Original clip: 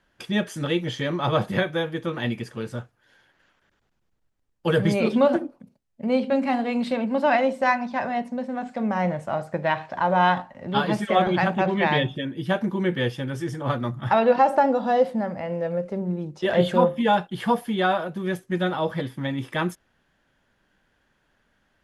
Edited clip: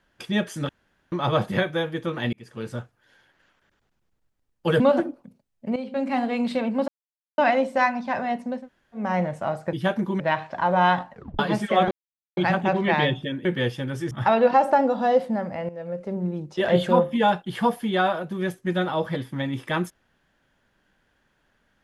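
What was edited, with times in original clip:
0.69–1.12 room tone
2.33–2.68 fade in
4.8–5.16 cut
6.12–6.58 fade in, from -14 dB
7.24 insert silence 0.50 s
8.47–8.86 room tone, crossfade 0.16 s
10.52 tape stop 0.26 s
11.3 insert silence 0.46 s
12.38–12.85 move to 9.59
13.51–13.96 cut
15.54–16.04 fade in, from -13.5 dB

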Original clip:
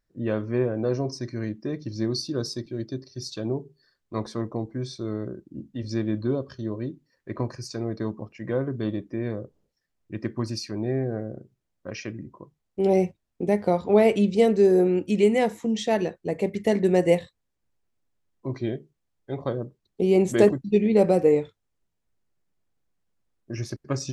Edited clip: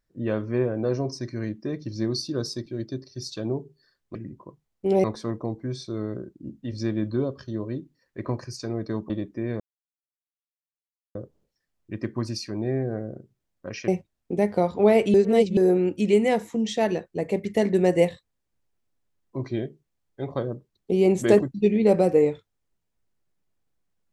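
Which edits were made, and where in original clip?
8.21–8.86 cut
9.36 insert silence 1.55 s
12.09–12.98 move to 4.15
14.24–14.67 reverse

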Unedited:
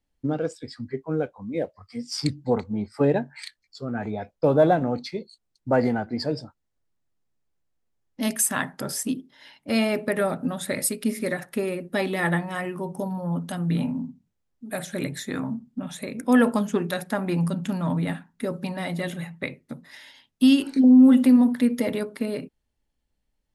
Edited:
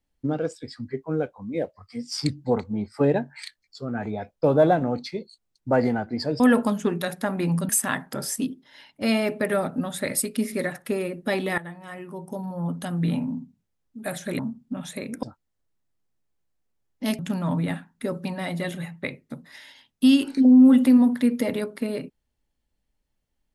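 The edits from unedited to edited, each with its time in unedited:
6.4–8.36 swap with 16.29–17.58
12.25–13.5 fade in, from -18.5 dB
15.06–15.45 cut

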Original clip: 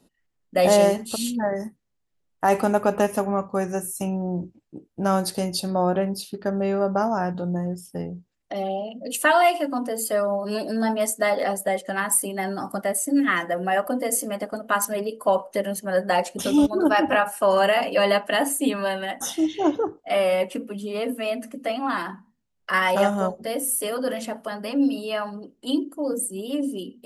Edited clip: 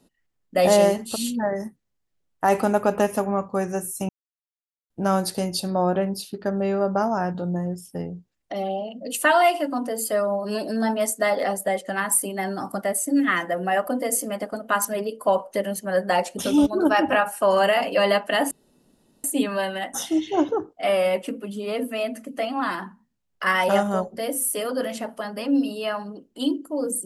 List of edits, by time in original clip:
4.09–4.9 mute
18.51 insert room tone 0.73 s

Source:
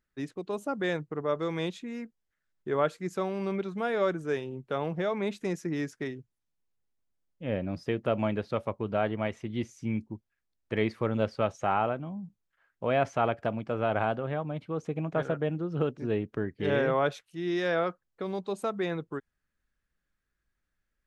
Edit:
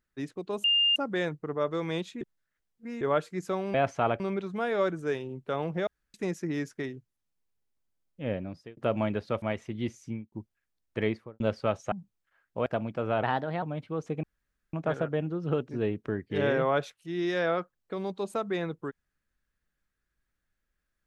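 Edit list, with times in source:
0.64 add tone 2810 Hz -20.5 dBFS 0.32 s
1.89–2.69 reverse
5.09–5.36 room tone
7.49–7.99 fade out
8.64–9.17 cut
9.76–10.07 studio fade out
10.75–11.15 studio fade out
11.67–12.18 cut
12.92–13.38 move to 3.42
13.95–14.41 speed 117%
15.02 insert room tone 0.50 s

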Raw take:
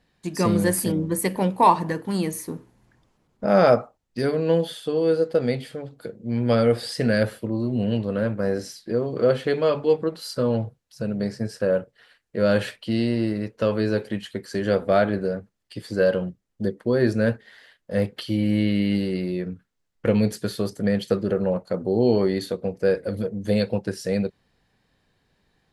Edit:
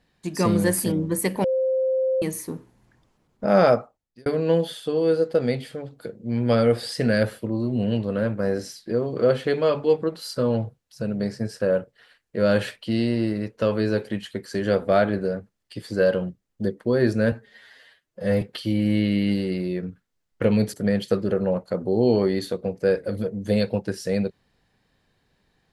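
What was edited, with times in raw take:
1.44–2.22 bleep 523 Hz -19 dBFS
3.61–4.26 fade out
17.32–18.05 stretch 1.5×
20.37–20.73 cut

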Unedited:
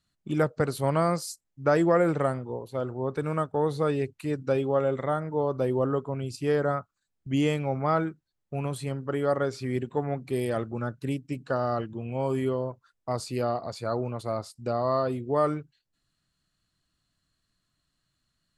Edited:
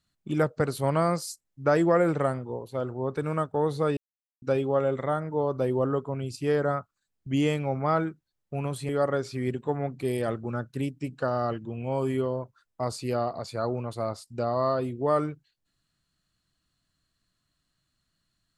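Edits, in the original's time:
3.97–4.42 mute
8.89–9.17 cut

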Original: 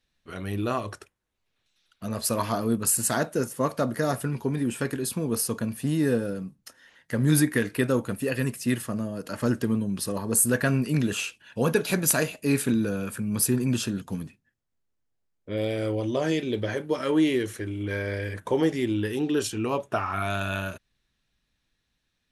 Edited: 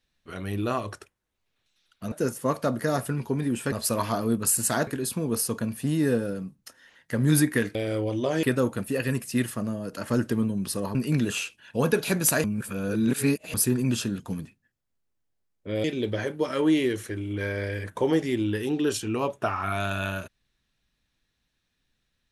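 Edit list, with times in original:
2.12–3.27 move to 4.87
10.27–10.77 cut
12.26–13.36 reverse
15.66–16.34 move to 7.75

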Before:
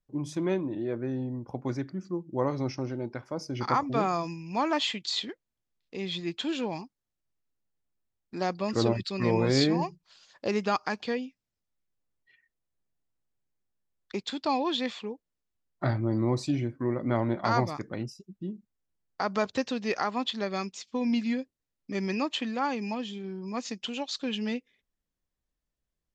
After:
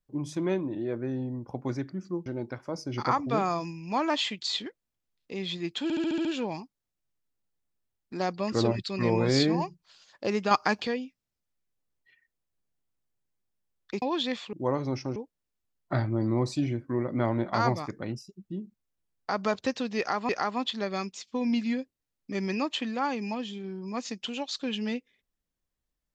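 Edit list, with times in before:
2.26–2.89 move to 15.07
6.46 stutter 0.07 s, 7 plays
10.72–11.08 gain +5.5 dB
14.23–14.56 cut
19.89–20.2 loop, 2 plays

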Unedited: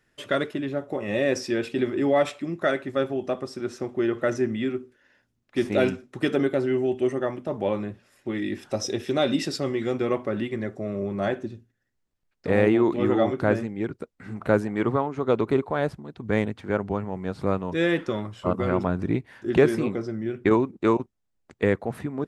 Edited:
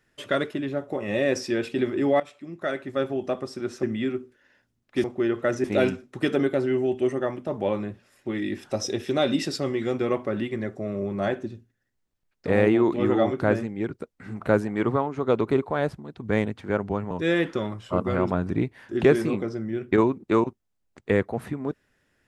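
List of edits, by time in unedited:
2.2–3.13 fade in linear, from -18.5 dB
3.83–4.43 move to 5.64
17.11–17.64 cut

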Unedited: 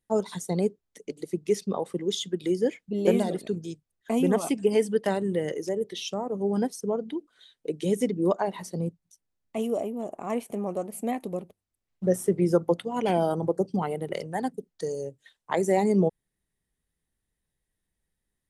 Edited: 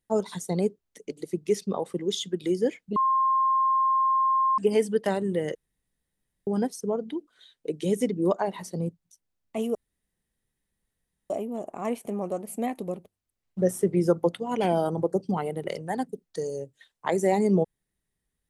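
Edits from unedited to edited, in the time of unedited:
2.96–4.58 bleep 1060 Hz -19.5 dBFS
5.55–6.47 room tone
9.75 insert room tone 1.55 s

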